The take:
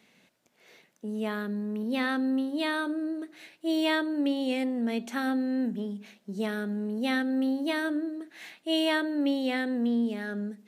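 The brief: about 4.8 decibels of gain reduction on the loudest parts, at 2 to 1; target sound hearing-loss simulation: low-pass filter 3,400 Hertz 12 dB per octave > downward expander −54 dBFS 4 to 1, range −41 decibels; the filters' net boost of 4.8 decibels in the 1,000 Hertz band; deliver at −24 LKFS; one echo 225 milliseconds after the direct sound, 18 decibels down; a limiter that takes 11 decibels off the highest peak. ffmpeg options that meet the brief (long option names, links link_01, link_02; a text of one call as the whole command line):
ffmpeg -i in.wav -af "equalizer=frequency=1000:width_type=o:gain=6,acompressor=threshold=-30dB:ratio=2,alimiter=level_in=4.5dB:limit=-24dB:level=0:latency=1,volume=-4.5dB,lowpass=3400,aecho=1:1:225:0.126,agate=range=-41dB:threshold=-54dB:ratio=4,volume=12.5dB" out.wav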